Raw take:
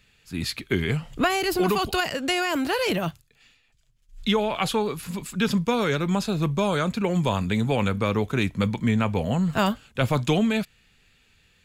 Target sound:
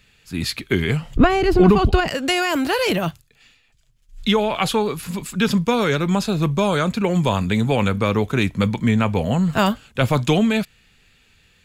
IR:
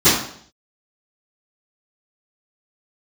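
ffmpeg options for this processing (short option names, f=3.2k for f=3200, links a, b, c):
-filter_complex "[0:a]asettb=1/sr,asplit=3[a][b][c];[a]atrim=end=1.164[d];[b]atrim=start=1.16:end=2.08,asetpts=PTS-STARTPTS,afade=t=in:d=0.004:c=qsin,afade=t=out:st=0.916:d=0.004:c=qsin,aemphasis=mode=reproduction:type=riaa[e];[c]atrim=start=2.076[f];[d][e]acrossfade=d=0.004:c1=hsin:c2=qsin[g];[g][f]acrossfade=d=0.004:c1=qsin:c2=hsin,volume=4.5dB"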